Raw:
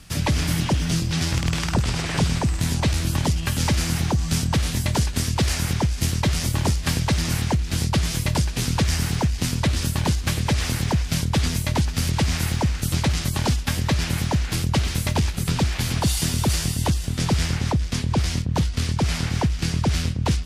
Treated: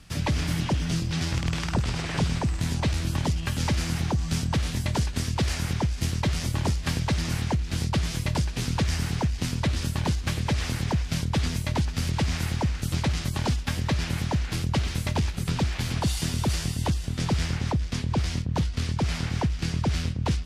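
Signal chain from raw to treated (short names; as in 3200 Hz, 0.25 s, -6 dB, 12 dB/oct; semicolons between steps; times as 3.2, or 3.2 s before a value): high shelf 8200 Hz -9 dB; gain -4 dB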